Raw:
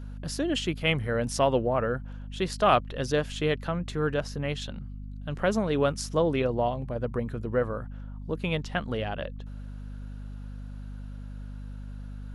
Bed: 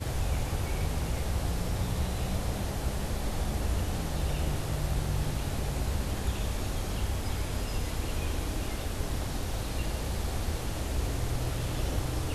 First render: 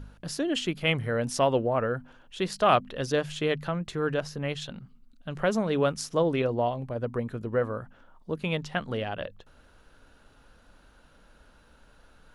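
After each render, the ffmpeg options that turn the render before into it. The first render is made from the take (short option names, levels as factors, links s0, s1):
-af "bandreject=f=50:t=h:w=4,bandreject=f=100:t=h:w=4,bandreject=f=150:t=h:w=4,bandreject=f=200:t=h:w=4,bandreject=f=250:t=h:w=4"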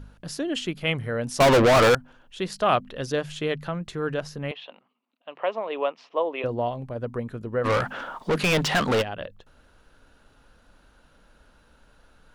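-filter_complex "[0:a]asettb=1/sr,asplit=3[s0][s1][s2];[s0]atrim=end=1.404[s3];[s1]atrim=start=1.4:end=1.95,asetpts=PTS-STARTPTS,afade=t=in:d=0.004:c=qsin,afade=t=out:st=0.546:d=0.004:c=qsin,asplit=2[s4][s5];[s5]highpass=f=720:p=1,volume=70.8,asoftclip=type=tanh:threshold=0.316[s6];[s4][s6]amix=inputs=2:normalize=0,lowpass=f=7400:p=1,volume=0.501[s7];[s2]atrim=start=1.946[s8];[s3][s7]acrossfade=d=0.004:c1=hsin:c2=qsin[s9];[s9][s8]acrossfade=d=0.004:c1=qsin:c2=hsin,asettb=1/sr,asplit=3[s10][s11][s12];[s10]atrim=end=4.514[s13];[s11]atrim=start=4.51:end=6.44,asetpts=PTS-STARTPTS,afade=t=in:d=0.004:c=qsin,afade=t=out:st=1.926:d=0.004:c=qsin,highpass=f=370:w=0.5412,highpass=f=370:w=1.3066,equalizer=f=390:t=q:w=4:g=-5,equalizer=f=690:t=q:w=4:g=3,equalizer=f=1000:t=q:w=4:g=6,equalizer=f=1500:t=q:w=4:g=-9,equalizer=f=2700:t=q:w=4:g=5,lowpass=f=3100:w=0.5412,lowpass=f=3100:w=1.3066[s14];[s12]atrim=start=6.436[s15];[s13][s14]acrossfade=d=0.004:c1=hsin:c2=qsin[s16];[s16][s15]acrossfade=d=0.004:c1=qsin:c2=hsin,asplit=3[s17][s18][s19];[s17]afade=t=out:st=7.64:d=0.02[s20];[s18]asplit=2[s21][s22];[s22]highpass=f=720:p=1,volume=44.7,asoftclip=type=tanh:threshold=0.2[s23];[s21][s23]amix=inputs=2:normalize=0,lowpass=f=4700:p=1,volume=0.501,afade=t=in:st=7.64:d=0.02,afade=t=out:st=9.01:d=0.02[s24];[s19]afade=t=in:st=9.01:d=0.02[s25];[s20][s24][s25]amix=inputs=3:normalize=0"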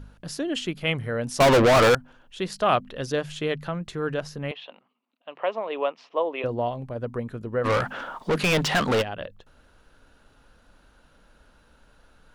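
-af anull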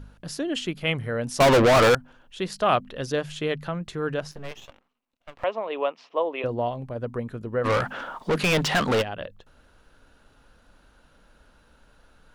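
-filter_complex "[0:a]asettb=1/sr,asplit=3[s0][s1][s2];[s0]atrim=end=4.314[s3];[s1]atrim=start=4.31:end=5.44,asetpts=PTS-STARTPTS,afade=t=in:d=0.004:c=qsin,afade=t=out:st=1.126:d=0.004:c=qsin,aeval=exprs='max(val(0),0)':c=same[s4];[s2]atrim=start=5.436[s5];[s3][s4]acrossfade=d=0.004:c1=hsin:c2=qsin[s6];[s6][s5]acrossfade=d=0.004:c1=qsin:c2=hsin"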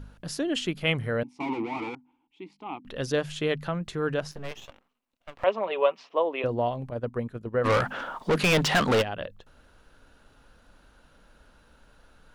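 -filter_complex "[0:a]asettb=1/sr,asplit=3[s0][s1][s2];[s0]atrim=end=1.234[s3];[s1]atrim=start=1.23:end=2.85,asetpts=PTS-STARTPTS,afade=t=in:d=0.004:c=qsin,afade=t=out:st=1.616:d=0.004:c=qsin,asplit=3[s4][s5][s6];[s4]bandpass=f=300:t=q:w=8,volume=1[s7];[s5]bandpass=f=870:t=q:w=8,volume=0.501[s8];[s6]bandpass=f=2240:t=q:w=8,volume=0.355[s9];[s7][s8][s9]amix=inputs=3:normalize=0[s10];[s2]atrim=start=2.846[s11];[s3][s10]acrossfade=d=0.004:c1=hsin:c2=qsin[s12];[s12][s11]acrossfade=d=0.004:c1=qsin:c2=hsin,asettb=1/sr,asplit=3[s13][s14][s15];[s13]atrim=end=5.464[s16];[s14]atrim=start=5.46:end=6.03,asetpts=PTS-STARTPTS,afade=t=in:d=0.004:c=qsin,afade=t=out:st=0.566:d=0.004:c=qsin,aecho=1:1:5.2:0.72,atrim=end_sample=25137[s17];[s15]atrim=start=6.026[s18];[s16][s17]acrossfade=d=0.004:c1=hsin:c2=qsin[s19];[s19][s18]acrossfade=d=0.004:c1=qsin:c2=hsin,asettb=1/sr,asplit=3[s20][s21][s22];[s20]atrim=end=6.904[s23];[s21]atrim=start=6.9:end=7.72,asetpts=PTS-STARTPTS,afade=t=in:d=0.004:c=qsin,afade=t=out:st=0.816:d=0.004:c=qsin,agate=range=0.398:threshold=0.02:ratio=16:release=100:detection=peak[s24];[s22]atrim=start=7.716[s25];[s23][s24]acrossfade=d=0.004:c1=hsin:c2=qsin[s26];[s26][s25]acrossfade=d=0.004:c1=qsin:c2=hsin"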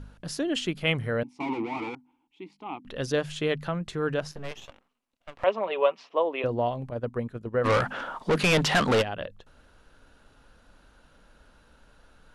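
-af "lowpass=f=12000:w=0.5412,lowpass=f=12000:w=1.3066"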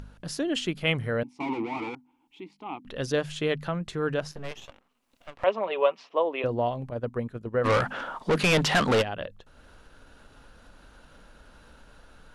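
-af "acompressor=mode=upward:threshold=0.00631:ratio=2.5"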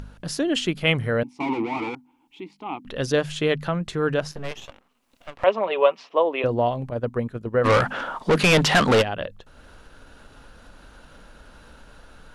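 -af "volume=1.78"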